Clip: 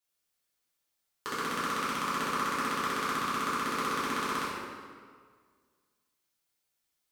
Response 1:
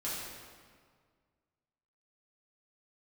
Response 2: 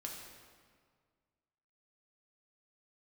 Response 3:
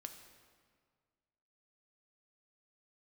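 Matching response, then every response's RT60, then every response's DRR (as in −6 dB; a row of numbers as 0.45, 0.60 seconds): 1; 1.8, 1.8, 1.8 seconds; −9.0, −1.0, 5.5 decibels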